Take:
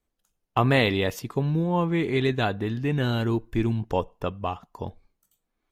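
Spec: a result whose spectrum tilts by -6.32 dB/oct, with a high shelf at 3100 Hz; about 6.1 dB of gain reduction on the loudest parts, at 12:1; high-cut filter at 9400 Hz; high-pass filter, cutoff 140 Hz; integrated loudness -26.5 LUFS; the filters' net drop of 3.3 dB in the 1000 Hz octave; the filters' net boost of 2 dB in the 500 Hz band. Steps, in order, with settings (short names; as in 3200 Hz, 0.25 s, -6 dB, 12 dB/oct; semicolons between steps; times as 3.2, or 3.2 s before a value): HPF 140 Hz; LPF 9400 Hz; bell 500 Hz +4 dB; bell 1000 Hz -5.5 dB; high shelf 3100 Hz -7 dB; compressor 12:1, threshold -23 dBFS; gain +4 dB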